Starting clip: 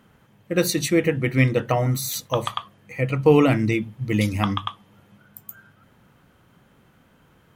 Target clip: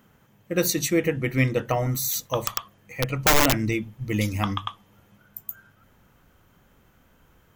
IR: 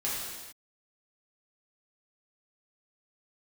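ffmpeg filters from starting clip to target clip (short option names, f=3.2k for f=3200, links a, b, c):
-filter_complex "[0:a]asettb=1/sr,asplit=3[a][b][c];[a]atrim=end=2.404[d];[b]atrim=start=2.4:end=3.59,asetpts=PTS-STARTPTS,afade=t=in:d=0.004:c=qsin,afade=t=out:st=1.186:d=0.004:c=qsin,aeval=exprs='(mod(3.35*val(0)+1,2)-1)/3.35':c=same[e];[c]atrim=start=3.586[f];[d][e]acrossfade=d=0.004:c1=hsin:c2=qsin[g];[g][f]acrossfade=d=0.004:c1=qsin:c2=hsin,aexciter=amount=1.8:drive=3.1:freq=5.7k,asubboost=boost=4:cutoff=64,volume=-2.5dB"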